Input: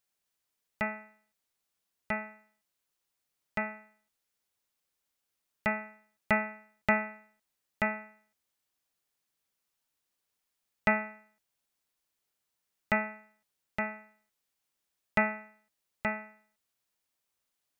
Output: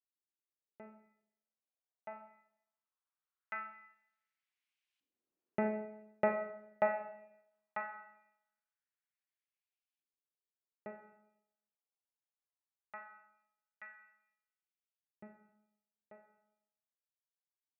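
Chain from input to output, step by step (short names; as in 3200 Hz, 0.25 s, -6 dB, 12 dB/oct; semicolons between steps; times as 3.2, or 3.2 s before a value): Doppler pass-by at 5.73, 5 m/s, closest 3.1 m; LFO band-pass saw up 0.2 Hz 280–2800 Hz; Schroeder reverb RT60 0.8 s, combs from 29 ms, DRR 7 dB; gain +8 dB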